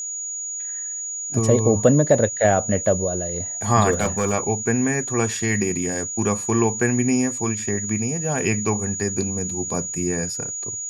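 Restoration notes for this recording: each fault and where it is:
whine 6.8 kHz -27 dBFS
3.91–4.34 s: clipped -14.5 dBFS

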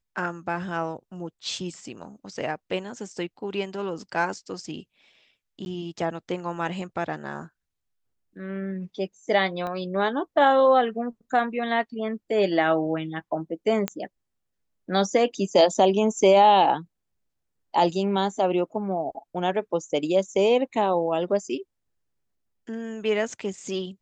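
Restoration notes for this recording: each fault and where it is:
5.65–5.66 s: dropout 11 ms
9.67 s: pop -21 dBFS
13.88 s: pop -11 dBFS

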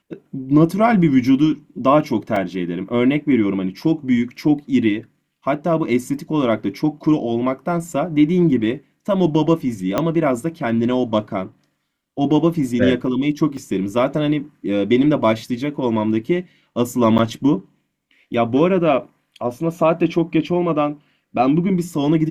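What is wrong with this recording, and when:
2.36 s: dropout 3.6 ms
9.98 s: pop -5 dBFS
13.57 s: dropout 4.2 ms
17.18–17.19 s: dropout 9.1 ms

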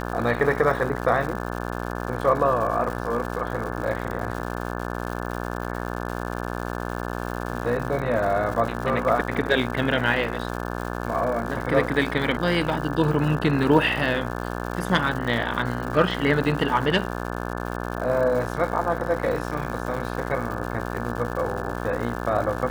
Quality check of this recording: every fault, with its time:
buzz 60 Hz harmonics 29 -30 dBFS
crackle 210 per s -31 dBFS

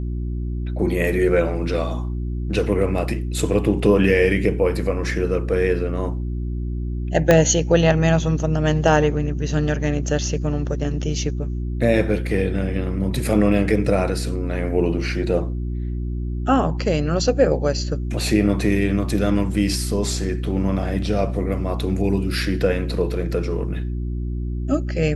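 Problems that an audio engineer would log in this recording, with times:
hum 60 Hz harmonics 6 -25 dBFS
7.31 s: pop -2 dBFS

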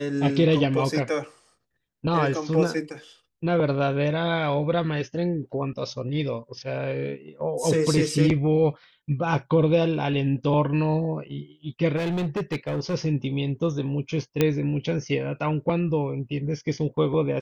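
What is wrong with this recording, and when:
11.96–12.95 s: clipped -23 dBFS
14.41 s: pop -7 dBFS

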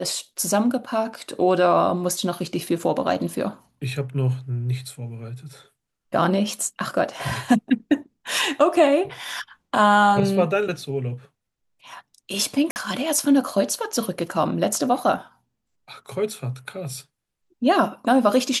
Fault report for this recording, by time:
12.71–12.76 s: dropout 49 ms

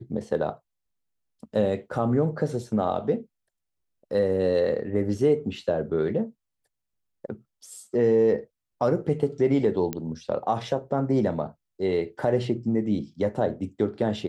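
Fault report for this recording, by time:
9.93 s: pop -14 dBFS

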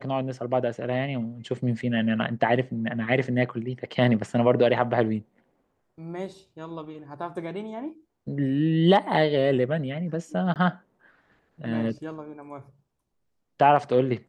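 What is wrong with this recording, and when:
10.54–10.56 s: dropout 18 ms

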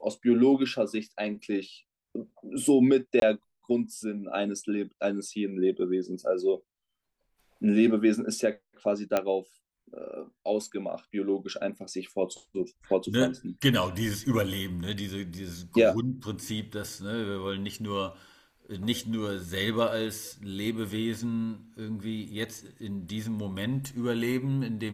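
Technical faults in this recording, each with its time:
3.20–3.22 s: dropout 22 ms
9.17 s: pop -12 dBFS

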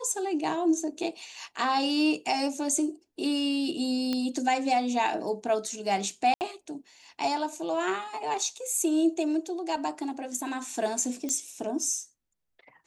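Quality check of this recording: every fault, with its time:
4.13 s: pop -16 dBFS
6.34–6.41 s: dropout 69 ms
11.29 s: pop -19 dBFS

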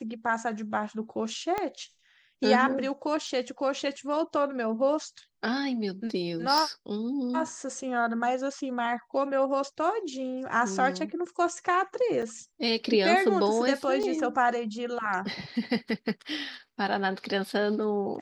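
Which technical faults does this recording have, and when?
1.58 s: pop -16 dBFS
3.27 s: dropout 2.4 ms
6.58 s: pop
12.22–12.23 s: dropout 5.5 ms
14.03–14.04 s: dropout 5.4 ms

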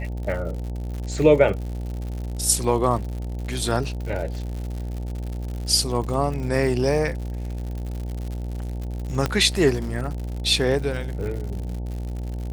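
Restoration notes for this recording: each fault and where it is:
buzz 60 Hz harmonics 15 -29 dBFS
crackle 130 per s -31 dBFS
9.26 s: pop -8 dBFS

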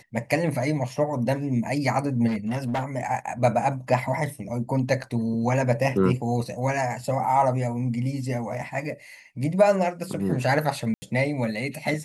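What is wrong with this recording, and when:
2.27–2.83 s: clipped -22.5 dBFS
5.03 s: dropout 4.8 ms
10.94–11.02 s: dropout 80 ms

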